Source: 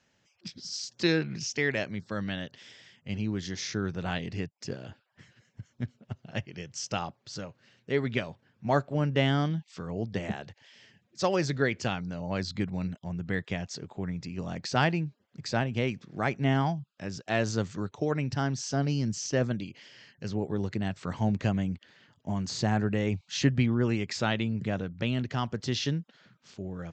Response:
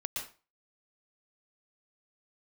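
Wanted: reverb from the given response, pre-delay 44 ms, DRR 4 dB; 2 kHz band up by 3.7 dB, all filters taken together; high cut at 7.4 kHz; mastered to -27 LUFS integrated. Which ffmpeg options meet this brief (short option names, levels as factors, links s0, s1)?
-filter_complex "[0:a]lowpass=7400,equalizer=f=2000:t=o:g=4.5,asplit=2[s0][s1];[1:a]atrim=start_sample=2205,adelay=44[s2];[s1][s2]afir=irnorm=-1:irlink=0,volume=0.501[s3];[s0][s3]amix=inputs=2:normalize=0,volume=1.26"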